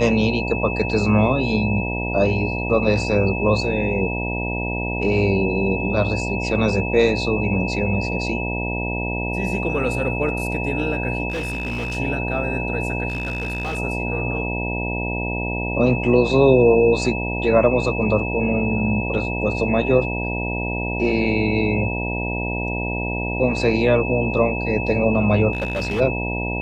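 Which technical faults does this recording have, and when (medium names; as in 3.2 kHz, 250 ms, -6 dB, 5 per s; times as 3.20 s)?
buzz 60 Hz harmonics 16 -26 dBFS
whine 2.6 kHz -27 dBFS
11.30–11.97 s: clipped -22 dBFS
13.08–13.79 s: clipped -21.5 dBFS
25.53–26.01 s: clipped -19.5 dBFS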